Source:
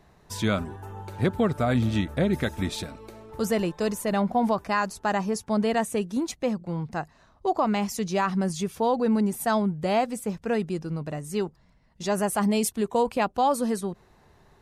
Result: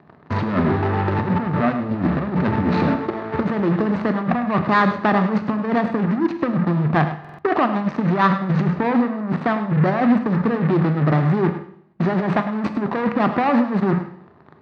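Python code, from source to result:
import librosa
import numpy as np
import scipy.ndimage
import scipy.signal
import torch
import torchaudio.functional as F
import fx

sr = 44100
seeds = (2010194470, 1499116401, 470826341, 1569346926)

p1 = scipy.signal.medfilt(x, 25)
p2 = fx.peak_eq(p1, sr, hz=180.0, db=8.0, octaves=2.4)
p3 = fx.hum_notches(p2, sr, base_hz=60, count=3)
p4 = fx.level_steps(p3, sr, step_db=19)
p5 = p3 + (p4 * 10.0 ** (2.0 / 20.0))
p6 = fx.leveller(p5, sr, passes=3)
p7 = fx.over_compress(p6, sr, threshold_db=-13.0, ratio=-0.5)
p8 = 10.0 ** (-11.5 / 20.0) * np.tanh(p7 / 10.0 ** (-11.5 / 20.0))
p9 = fx.cabinet(p8, sr, low_hz=100.0, low_slope=24, high_hz=3900.0, hz=(120.0, 190.0, 500.0, 1200.0, 1800.0, 3200.0), db=(-7, -3, -4, 6, 7, -6))
p10 = p9 + fx.echo_single(p9, sr, ms=103, db=-12.0, dry=0)
p11 = fx.rev_schroeder(p10, sr, rt60_s=0.65, comb_ms=26, drr_db=9.5)
y = fx.buffer_glitch(p11, sr, at_s=(7.2,), block=2048, repeats=3)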